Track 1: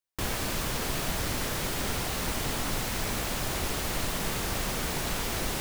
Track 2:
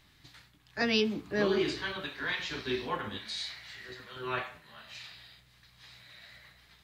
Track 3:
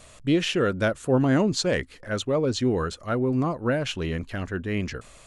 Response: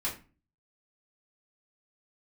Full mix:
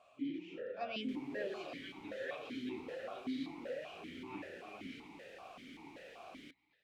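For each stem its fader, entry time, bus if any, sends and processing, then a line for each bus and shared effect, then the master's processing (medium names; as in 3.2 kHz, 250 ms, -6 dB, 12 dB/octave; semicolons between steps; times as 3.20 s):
-8.0 dB, 0.90 s, no send, none
-1.5 dB, 0.00 s, no send, none
-2.5 dB, 0.00 s, no send, phase randomisation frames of 200 ms; compression 5:1, threshold -31 dBFS, peak gain reduction 14 dB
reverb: none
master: stepped vowel filter 5.2 Hz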